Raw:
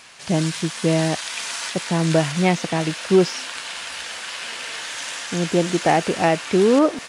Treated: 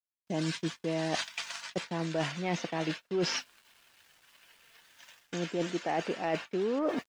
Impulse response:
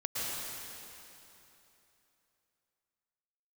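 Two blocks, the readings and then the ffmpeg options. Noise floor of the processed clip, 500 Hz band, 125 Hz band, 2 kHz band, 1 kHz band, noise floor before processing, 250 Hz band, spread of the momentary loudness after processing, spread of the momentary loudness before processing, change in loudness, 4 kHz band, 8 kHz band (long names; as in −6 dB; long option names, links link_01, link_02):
−78 dBFS, −13.5 dB, −15.0 dB, −12.0 dB, −13.0 dB, −34 dBFS, −13.5 dB, 7 LU, 11 LU, −12.0 dB, −11.5 dB, −15.0 dB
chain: -filter_complex "[0:a]afftdn=noise_reduction=13:noise_floor=-35,aeval=exprs='val(0)+0.00355*(sin(2*PI*50*n/s)+sin(2*PI*2*50*n/s)/2+sin(2*PI*3*50*n/s)/3+sin(2*PI*4*50*n/s)/4+sin(2*PI*5*50*n/s)/5)':channel_layout=same,agate=range=-31dB:threshold=-28dB:ratio=16:detection=peak,highpass=200,lowpass=7100,asplit=2[link_01][link_02];[link_02]volume=9.5dB,asoftclip=hard,volume=-9.5dB,volume=-6.5dB[link_03];[link_01][link_03]amix=inputs=2:normalize=0,acrusher=bits=9:mix=0:aa=0.000001,areverse,acompressor=threshold=-28dB:ratio=6,areverse,volume=-1.5dB"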